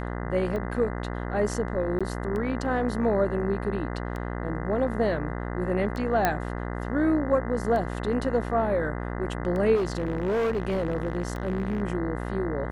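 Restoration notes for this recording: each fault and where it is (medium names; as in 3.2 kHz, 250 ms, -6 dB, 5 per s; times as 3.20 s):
buzz 60 Hz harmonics 34 -32 dBFS
tick 33 1/3 rpm -22 dBFS
1.99–2.01 s: dropout 16 ms
6.25 s: pop -8 dBFS
9.75–11.83 s: clipped -22.5 dBFS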